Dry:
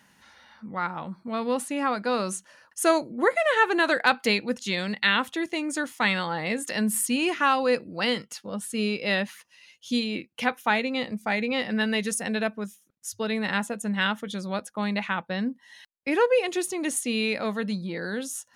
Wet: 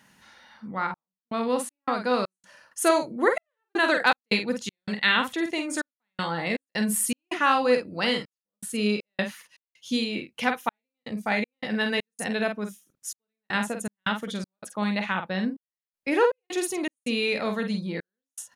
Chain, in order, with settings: doubler 48 ms -6.5 dB; step gate "xxxxx..xx.xx." 80 bpm -60 dB

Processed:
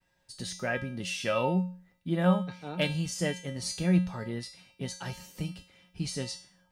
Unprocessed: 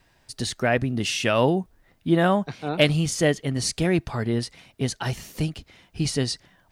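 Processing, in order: expander -58 dBFS; resonator 180 Hz, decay 0.44 s, harmonics odd, mix 90%; gain +6.5 dB

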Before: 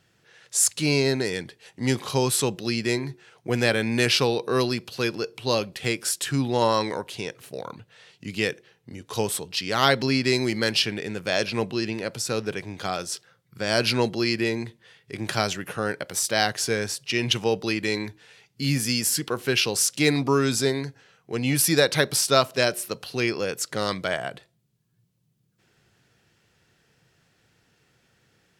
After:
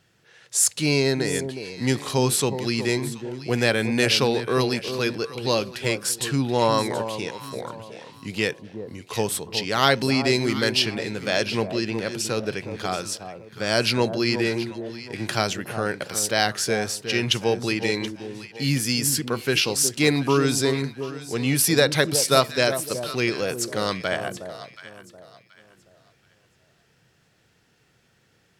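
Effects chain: echo with dull and thin repeats by turns 0.364 s, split 990 Hz, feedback 53%, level -8.5 dB; gain +1 dB

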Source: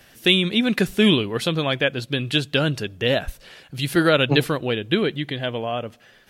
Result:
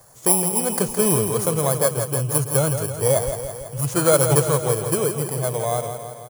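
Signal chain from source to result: FFT order left unsorted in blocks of 16 samples; ten-band EQ 125 Hz +10 dB, 250 Hz -11 dB, 500 Hz +7 dB, 1000 Hz +9 dB, 2000 Hz -4 dB, 4000 Hz -5 dB, 8000 Hz +11 dB; on a send: feedback echo 0.165 s, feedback 60%, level -8 dB; on the sum: gain -3.5 dB

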